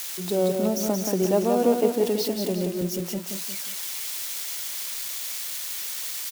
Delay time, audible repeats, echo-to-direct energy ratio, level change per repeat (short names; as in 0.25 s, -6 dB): 0.178 s, 3, -4.0 dB, -7.5 dB